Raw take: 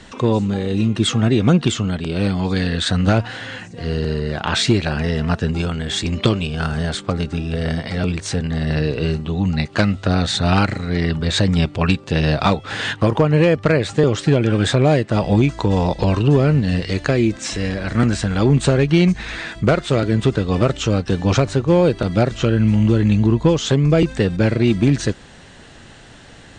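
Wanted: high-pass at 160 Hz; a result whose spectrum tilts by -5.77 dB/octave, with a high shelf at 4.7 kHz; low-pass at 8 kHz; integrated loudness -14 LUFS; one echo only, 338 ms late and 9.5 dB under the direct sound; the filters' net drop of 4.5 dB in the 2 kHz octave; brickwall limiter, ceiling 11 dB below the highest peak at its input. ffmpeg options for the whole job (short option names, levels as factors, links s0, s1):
-af "highpass=160,lowpass=8000,equalizer=f=2000:t=o:g=-4.5,highshelf=f=4700:g=-8.5,alimiter=limit=0.224:level=0:latency=1,aecho=1:1:338:0.335,volume=2.99"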